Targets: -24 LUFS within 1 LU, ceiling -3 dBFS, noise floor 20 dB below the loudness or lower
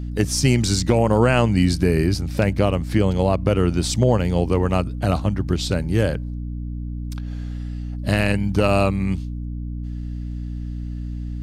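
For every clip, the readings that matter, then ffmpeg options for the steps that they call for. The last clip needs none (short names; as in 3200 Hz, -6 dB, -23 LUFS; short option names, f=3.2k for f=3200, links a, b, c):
hum 60 Hz; harmonics up to 300 Hz; hum level -26 dBFS; loudness -21.5 LUFS; peak -4.5 dBFS; loudness target -24.0 LUFS
-> -af "bandreject=f=60:t=h:w=6,bandreject=f=120:t=h:w=6,bandreject=f=180:t=h:w=6,bandreject=f=240:t=h:w=6,bandreject=f=300:t=h:w=6"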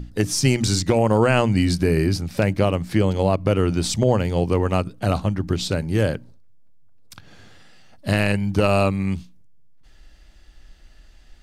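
hum none; loudness -21.0 LUFS; peak -5.5 dBFS; loudness target -24.0 LUFS
-> -af "volume=-3dB"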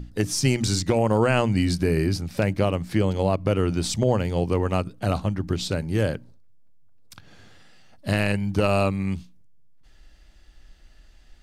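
loudness -24.0 LUFS; peak -8.5 dBFS; noise floor -52 dBFS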